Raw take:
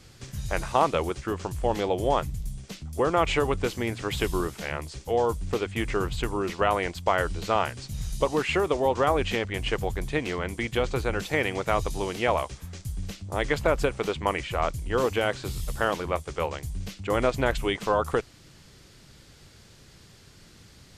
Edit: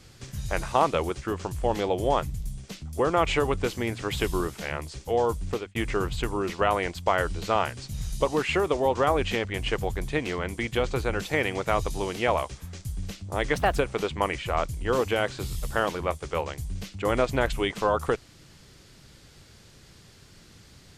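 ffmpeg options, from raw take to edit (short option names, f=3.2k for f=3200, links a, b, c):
-filter_complex "[0:a]asplit=4[a][b][c][d];[a]atrim=end=5.75,asetpts=PTS-STARTPTS,afade=t=out:st=5.49:d=0.26[e];[b]atrim=start=5.75:end=13.554,asetpts=PTS-STARTPTS,afade=t=in:d=0.004:c=hsin[f];[c]atrim=start=13.55:end=13.81,asetpts=PTS-STARTPTS,asetrate=54684,aresample=44100[g];[d]atrim=start=13.806[h];[e][f]concat=n=2:v=0:a=1[i];[i][g]acrossfade=d=0.004:c1=hsin:c2=hsin[j];[j][h]acrossfade=d=0.004:c1=hsin:c2=hsin"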